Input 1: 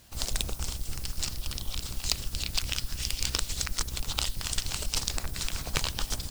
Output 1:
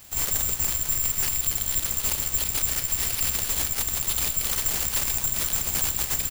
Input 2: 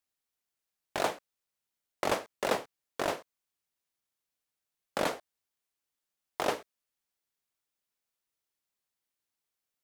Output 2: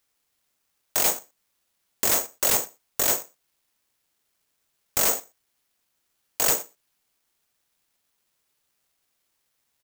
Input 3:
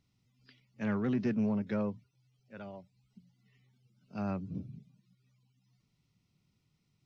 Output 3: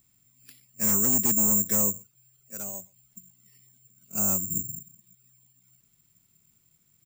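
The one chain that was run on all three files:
outdoor echo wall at 21 m, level -27 dB; wavefolder -27.5 dBFS; careless resampling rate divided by 6×, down none, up zero stuff; match loudness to -23 LUFS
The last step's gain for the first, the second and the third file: +1.0, +5.5, +2.0 dB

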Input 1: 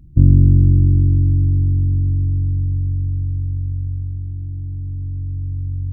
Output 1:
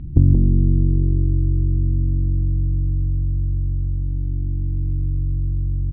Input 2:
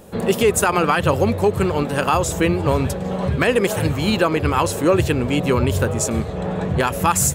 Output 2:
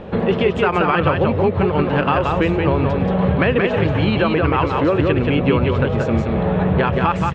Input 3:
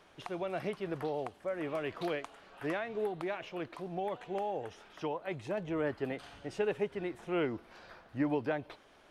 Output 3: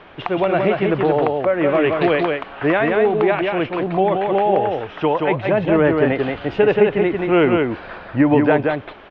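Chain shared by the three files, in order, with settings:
compressor 3:1, threshold -28 dBFS; LPF 3200 Hz 24 dB/oct; on a send: echo 0.178 s -3.5 dB; on the sum: normalise peaks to -3 dBFS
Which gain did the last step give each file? +12.5, +10.0, +18.5 dB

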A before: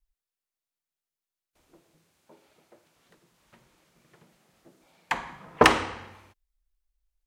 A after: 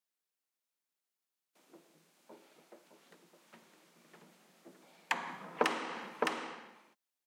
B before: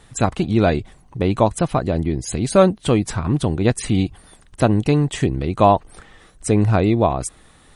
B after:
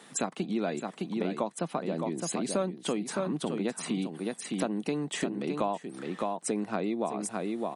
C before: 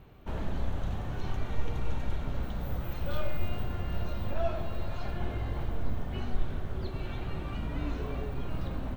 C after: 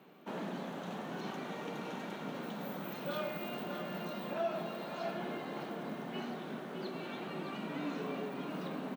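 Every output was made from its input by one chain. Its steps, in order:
steep high-pass 170 Hz 48 dB/oct; on a send: echo 0.612 s -8.5 dB; on the sum: compressor 4:1, threshold -30 dBFS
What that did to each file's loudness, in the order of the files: -13.0, -13.5, -4.0 LU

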